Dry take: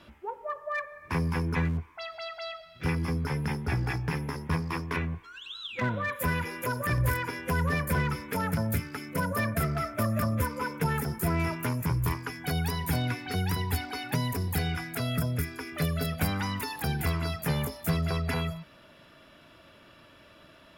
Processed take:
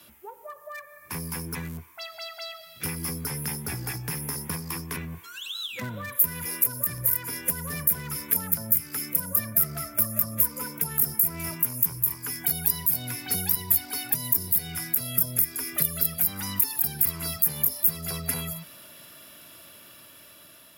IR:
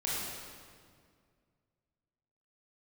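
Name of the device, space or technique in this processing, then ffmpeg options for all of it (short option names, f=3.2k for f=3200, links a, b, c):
FM broadcast chain: -filter_complex "[0:a]highpass=78,dynaudnorm=f=980:g=5:m=5.5dB,acrossover=split=120|260[a][b][c];[a]acompressor=threshold=-38dB:ratio=4[d];[b]acompressor=threshold=-33dB:ratio=4[e];[c]acompressor=threshold=-34dB:ratio=4[f];[d][e][f]amix=inputs=3:normalize=0,aemphasis=mode=production:type=50fm,alimiter=limit=-15.5dB:level=0:latency=1:release=284,asoftclip=type=hard:threshold=-18dB,lowpass=f=15k:w=0.5412,lowpass=f=15k:w=1.3066,aemphasis=mode=production:type=50fm,volume=-3.5dB"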